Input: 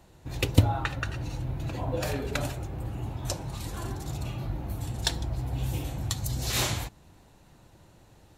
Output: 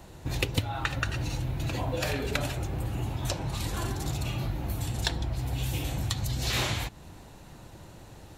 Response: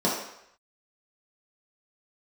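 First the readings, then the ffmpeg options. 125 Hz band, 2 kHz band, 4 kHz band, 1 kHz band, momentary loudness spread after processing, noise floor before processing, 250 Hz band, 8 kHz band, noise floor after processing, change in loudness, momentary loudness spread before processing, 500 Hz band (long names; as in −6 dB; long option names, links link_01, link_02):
−0.5 dB, +2.5 dB, +1.0 dB, 0.0 dB, 19 LU, −57 dBFS, −0.5 dB, −1.5 dB, −49 dBFS, 0.0 dB, 9 LU, 0.0 dB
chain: -filter_complex "[0:a]acrossover=split=1800|4000[link_01][link_02][link_03];[link_01]acompressor=threshold=-37dB:ratio=4[link_04];[link_02]acompressor=threshold=-40dB:ratio=4[link_05];[link_03]acompressor=threshold=-49dB:ratio=4[link_06];[link_04][link_05][link_06]amix=inputs=3:normalize=0,volume=8dB"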